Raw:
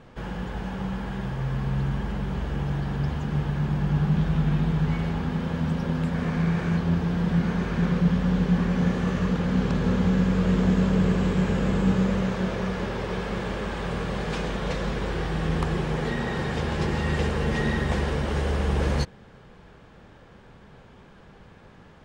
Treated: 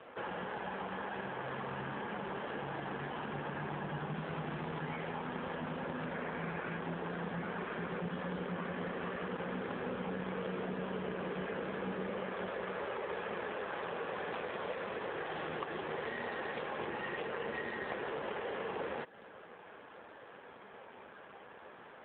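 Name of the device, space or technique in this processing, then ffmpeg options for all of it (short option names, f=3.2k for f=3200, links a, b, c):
voicemail: -filter_complex "[0:a]asettb=1/sr,asplit=3[a][b][c];[a]atrim=end=0.764[d];[b]atrim=start=0.76:end=1.8,asetpts=PTS-STARTPTS,afade=t=in:d=0.004:c=qsin,afade=t=out:st=1.036:d=0.004:c=qsin,highpass=f=80:p=1[e];[c]atrim=start=1.796[f];[d][e]acrossfade=d=0.004:c1=hsin:c2=qsin[g];[g][f]acrossfade=d=0.004:c1=qsin:c2=hsin,asplit=3[h][i][j];[h]afade=t=out:st=15.26:d=0.02[k];[i]highshelf=f=5.7k:g=9.5,afade=t=in:st=15.26:d=0.02,afade=t=out:st=16.66:d=0.02[l];[j]afade=t=in:st=16.66:d=0.02[m];[k][l][m]amix=inputs=3:normalize=0,highpass=430,lowpass=3.2k,acompressor=threshold=-39dB:ratio=6,volume=4.5dB" -ar 8000 -c:a libopencore_amrnb -b:a 7400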